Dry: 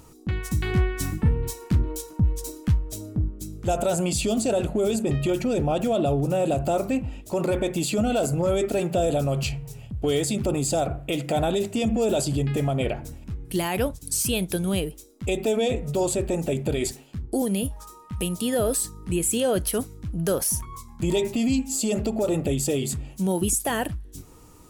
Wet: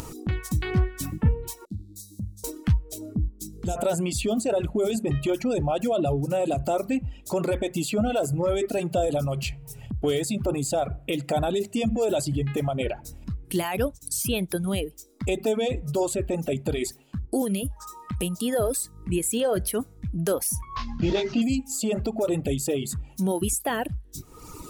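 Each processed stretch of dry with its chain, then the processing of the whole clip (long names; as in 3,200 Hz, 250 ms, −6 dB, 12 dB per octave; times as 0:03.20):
0:01.65–0:02.44: Chebyshev band-stop filter 360–3,800 Hz, order 4 + tuned comb filter 100 Hz, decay 1.1 s, mix 90%
0:03.14–0:03.76: flat-topped bell 1,200 Hz −9 dB 3 octaves + comb filter 4.4 ms, depth 33%
0:19.06–0:19.97: hum removal 97.38 Hz, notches 22 + one half of a high-frequency compander decoder only
0:20.76–0:21.42: variable-slope delta modulation 32 kbit/s + double-tracking delay 21 ms −4 dB + envelope flattener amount 50%
whole clip: reverb reduction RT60 1.3 s; dynamic equaliser 6,100 Hz, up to −4 dB, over −39 dBFS, Q 0.74; upward compression, threshold −27 dBFS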